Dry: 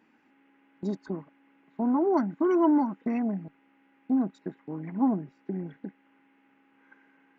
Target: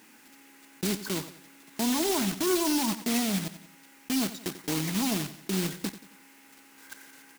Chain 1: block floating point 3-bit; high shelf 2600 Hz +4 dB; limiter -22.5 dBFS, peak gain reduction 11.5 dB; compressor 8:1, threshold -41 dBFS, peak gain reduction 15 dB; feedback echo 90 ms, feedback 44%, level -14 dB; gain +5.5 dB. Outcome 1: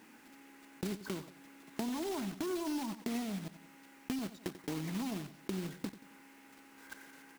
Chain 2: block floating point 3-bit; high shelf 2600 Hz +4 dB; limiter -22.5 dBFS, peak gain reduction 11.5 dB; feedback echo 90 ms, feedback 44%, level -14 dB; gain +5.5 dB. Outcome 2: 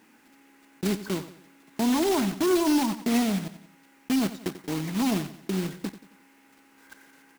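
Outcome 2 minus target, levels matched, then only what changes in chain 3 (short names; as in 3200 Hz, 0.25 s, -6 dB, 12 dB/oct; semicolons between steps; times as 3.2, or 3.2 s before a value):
4000 Hz band -4.5 dB
change: high shelf 2600 Hz +13.5 dB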